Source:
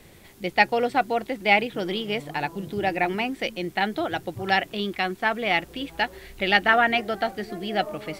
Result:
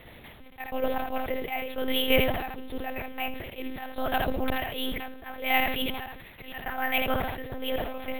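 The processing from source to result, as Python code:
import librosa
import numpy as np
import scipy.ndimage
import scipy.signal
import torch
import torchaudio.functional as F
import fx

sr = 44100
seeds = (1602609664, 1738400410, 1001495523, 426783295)

p1 = scipy.signal.sosfilt(scipy.signal.butter(4, 110.0, 'highpass', fs=sr, output='sos'), x)
p2 = fx.peak_eq(p1, sr, hz=220.0, db=-14.5, octaves=0.36)
p3 = fx.rider(p2, sr, range_db=3, speed_s=0.5)
p4 = p2 + F.gain(torch.from_numpy(p3), -1.0).numpy()
p5 = fx.auto_swell(p4, sr, attack_ms=691.0)
p6 = fx.quant_dither(p5, sr, seeds[0], bits=8, dither='none')
p7 = fx.echo_feedback(p6, sr, ms=74, feedback_pct=22, wet_db=-10.0)
p8 = fx.lpc_monotone(p7, sr, seeds[1], pitch_hz=260.0, order=8)
p9 = np.repeat(scipy.signal.resample_poly(p8, 1, 3), 3)[:len(p8)]
y = fx.sustainer(p9, sr, db_per_s=49.0)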